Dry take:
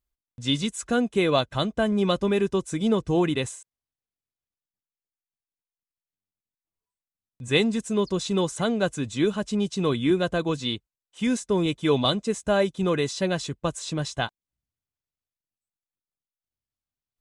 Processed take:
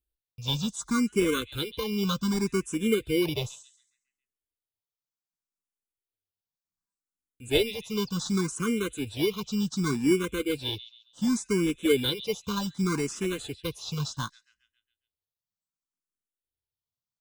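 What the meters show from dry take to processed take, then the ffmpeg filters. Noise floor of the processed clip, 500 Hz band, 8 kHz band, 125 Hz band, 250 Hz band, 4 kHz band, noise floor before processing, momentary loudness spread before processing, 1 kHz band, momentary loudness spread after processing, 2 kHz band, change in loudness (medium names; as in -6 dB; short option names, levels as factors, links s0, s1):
under -85 dBFS, -5.0 dB, -0.5 dB, -3.5 dB, -2.5 dB, -2.5 dB, under -85 dBFS, 7 LU, -7.5 dB, 9 LU, -3.5 dB, -3.5 dB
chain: -filter_complex "[0:a]asuperstop=centerf=710:order=12:qfactor=1.4,acrossover=split=2700[s0][s1];[s0]acrusher=samples=17:mix=1:aa=0.000001[s2];[s1]asplit=2[s3][s4];[s4]adelay=137,lowpass=f=3700:p=1,volume=0.316,asplit=2[s5][s6];[s6]adelay=137,lowpass=f=3700:p=1,volume=0.53,asplit=2[s7][s8];[s8]adelay=137,lowpass=f=3700:p=1,volume=0.53,asplit=2[s9][s10];[s10]adelay=137,lowpass=f=3700:p=1,volume=0.53,asplit=2[s11][s12];[s12]adelay=137,lowpass=f=3700:p=1,volume=0.53,asplit=2[s13][s14];[s14]adelay=137,lowpass=f=3700:p=1,volume=0.53[s15];[s3][s5][s7][s9][s11][s13][s15]amix=inputs=7:normalize=0[s16];[s2][s16]amix=inputs=2:normalize=0,asplit=2[s17][s18];[s18]afreqshift=0.67[s19];[s17][s19]amix=inputs=2:normalize=1"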